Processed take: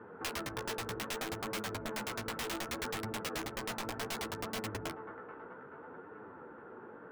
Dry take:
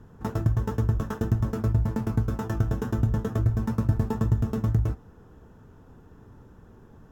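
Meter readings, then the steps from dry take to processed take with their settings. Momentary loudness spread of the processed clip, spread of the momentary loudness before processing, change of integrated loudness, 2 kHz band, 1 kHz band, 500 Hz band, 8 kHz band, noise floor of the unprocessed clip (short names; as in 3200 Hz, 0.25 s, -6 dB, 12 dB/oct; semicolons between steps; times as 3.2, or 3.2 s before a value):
12 LU, 3 LU, -13.0 dB, +4.5 dB, -2.0 dB, -5.5 dB, n/a, -52 dBFS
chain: speaker cabinet 310–2400 Hz, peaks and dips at 340 Hz +3 dB, 490 Hz +7 dB, 910 Hz +4 dB, 1400 Hz +10 dB, 2100 Hz +4 dB; split-band echo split 790 Hz, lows 84 ms, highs 0.432 s, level -13 dB; wrapped overs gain 26 dB; compressor 4:1, threshold -40 dBFS, peak gain reduction 9 dB; flange 0.65 Hz, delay 8.9 ms, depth 9.1 ms, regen -13%; gain +6 dB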